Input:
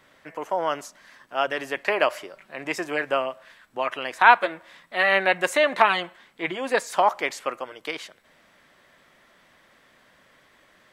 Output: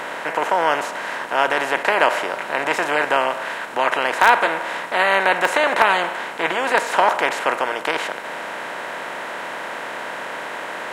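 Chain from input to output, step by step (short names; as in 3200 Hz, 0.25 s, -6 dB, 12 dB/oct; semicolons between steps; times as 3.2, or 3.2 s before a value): per-bin compression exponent 0.4; in parallel at -12 dB: wrapped overs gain -1 dB; on the sum: gain -4 dB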